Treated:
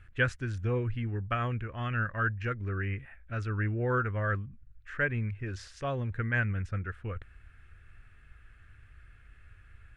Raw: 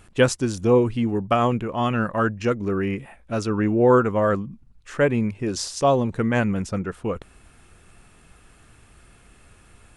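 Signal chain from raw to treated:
drawn EQ curve 100 Hz 0 dB, 180 Hz −16 dB, 560 Hz −16 dB, 940 Hz −19 dB, 1,600 Hz 0 dB, 5,000 Hz −20 dB, 11,000 Hz −26 dB

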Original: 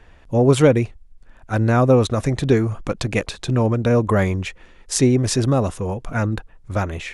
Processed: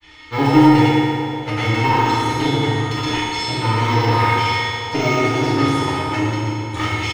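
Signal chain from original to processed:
lower of the sound and its delayed copy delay 0.92 ms
meter weighting curve D
de-essing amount 70%
high-shelf EQ 7,600 Hz −8.5 dB
mains-hum notches 50/100/150/200/250/300 Hz
comb filter 2.3 ms, depth 56%
in parallel at −0.5 dB: downward compressor, threshold −29 dBFS, peak gain reduction 14.5 dB
on the sum: granular cloud, pitch spread up and down by 0 semitones
tuned comb filter 310 Hz, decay 0.6 s, mix 90%
on a send: echo through a band-pass that steps 411 ms, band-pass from 420 Hz, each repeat 0.7 octaves, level −10.5 dB
on the sum: feedback delay network reverb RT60 2.4 s, low-frequency decay 1.1×, high-frequency decay 0.85×, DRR −6.5 dB
boost into a limiter +14 dB
level −1 dB

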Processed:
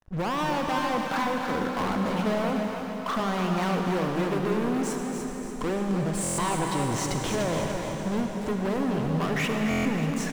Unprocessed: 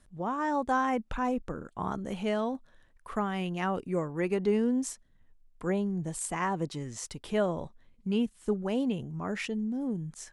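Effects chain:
0:00.78–0:03.20: Chebyshev high-pass filter 160 Hz, order 3
downward expander −57 dBFS
low-pass filter 2,100 Hz 6 dB per octave
parametric band 880 Hz +5 dB 2.9 octaves
downward compressor 10 to 1, threshold −34 dBFS, peak gain reduction 15 dB
leveller curve on the samples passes 5
soft clipping −23.5 dBFS, distortion −22 dB
repeating echo 293 ms, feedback 42%, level −7 dB
convolution reverb RT60 4.5 s, pre-delay 38 ms, DRR 2.5 dB
buffer that repeats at 0:06.22/0:09.69, samples 1,024, times 6
level −1 dB

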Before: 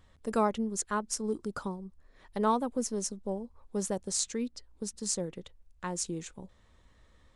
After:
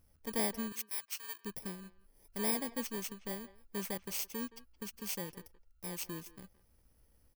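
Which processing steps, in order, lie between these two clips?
samples in bit-reversed order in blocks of 32 samples
0:00.72–0:01.45: high-pass filter 1,300 Hz 12 dB per octave
far-end echo of a speakerphone 170 ms, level −17 dB
level −6.5 dB

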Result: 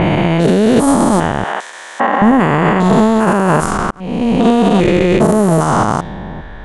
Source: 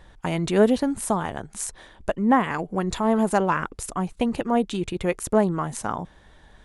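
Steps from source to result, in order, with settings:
spectrum averaged block by block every 400 ms
0:01.44–0:02.22: Bessel high-pass filter 770 Hz, order 2
low-pass that shuts in the quiet parts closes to 2,000 Hz, open at −22.5 dBFS
0:03.91–0:04.58: fade in linear
boost into a limiter +24 dB
level −1 dB

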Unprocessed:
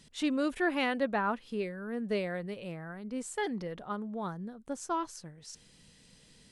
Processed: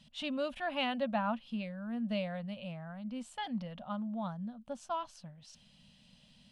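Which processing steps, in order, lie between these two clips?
drawn EQ curve 110 Hz 0 dB, 230 Hz +6 dB, 400 Hz −24 dB, 580 Hz +5 dB, 2,000 Hz −5 dB, 2,900 Hz +7 dB, 7,200 Hz −9 dB
level −4 dB

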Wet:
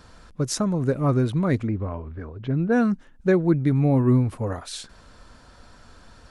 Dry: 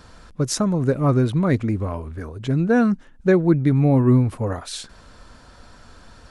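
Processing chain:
0:01.67–0:02.72: high-frequency loss of the air 280 metres
level −3 dB

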